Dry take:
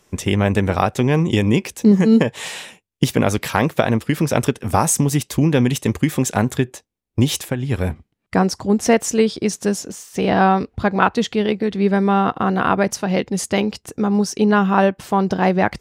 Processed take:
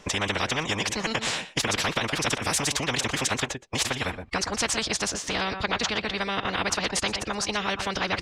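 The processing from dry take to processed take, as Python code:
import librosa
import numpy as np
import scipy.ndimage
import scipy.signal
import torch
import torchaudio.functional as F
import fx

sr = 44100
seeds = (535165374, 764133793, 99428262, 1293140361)

p1 = scipy.signal.sosfilt(scipy.signal.butter(2, 5300.0, 'lowpass', fs=sr, output='sos'), x)
p2 = fx.low_shelf(p1, sr, hz=62.0, db=8.5)
p3 = fx.notch(p2, sr, hz=370.0, q=12.0)
p4 = fx.stretch_vocoder(p3, sr, factor=0.52)
p5 = p4 + fx.echo_single(p4, sr, ms=120, db=-20.0, dry=0)
p6 = fx.spectral_comp(p5, sr, ratio=4.0)
y = F.gain(torch.from_numpy(p6), -6.5).numpy()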